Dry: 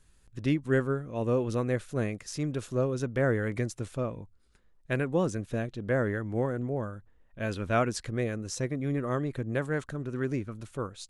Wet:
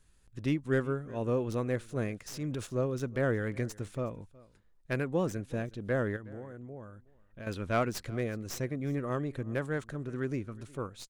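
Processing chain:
stylus tracing distortion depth 0.094 ms
0:02.26–0:02.67: transient designer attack −5 dB, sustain +5 dB
0:06.16–0:07.47: downward compressor 3 to 1, threshold −42 dBFS, peak gain reduction 13.5 dB
on a send: single-tap delay 367 ms −22.5 dB
on the sum: level −3 dB

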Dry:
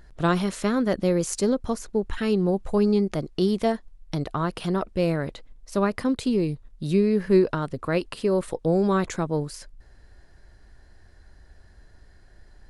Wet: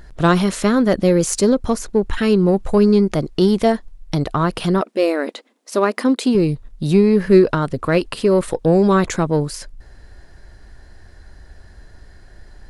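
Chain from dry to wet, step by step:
in parallel at −9 dB: soft clipping −25.5 dBFS, distortion −7 dB
0:04.81–0:06.35: on the sum: linear-phase brick-wall high-pass 210 Hz
level +6.5 dB

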